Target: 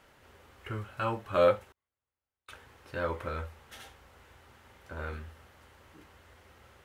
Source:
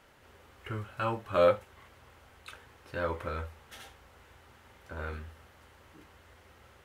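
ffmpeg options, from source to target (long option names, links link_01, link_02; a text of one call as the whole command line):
ffmpeg -i in.wav -filter_complex "[0:a]asettb=1/sr,asplit=3[link_01][link_02][link_03];[link_01]atrim=end=1.724[link_04];[link_02]atrim=start=1.72:end=2.49,asetpts=PTS-STARTPTS,afade=type=in:duration=0.004:curve=qsin,afade=type=out:start_time=0.766:duration=0.004:curve=qsin,agate=range=-38dB:threshold=-44dB:ratio=16:detection=peak[link_05];[link_03]atrim=start=2.486[link_06];[link_04][link_05]acrossfade=duration=0.004:curve1=hsin:curve2=qsin[link_07];[link_07][link_06]acrossfade=duration=0.004:curve1=qsin:curve2=hsin" out.wav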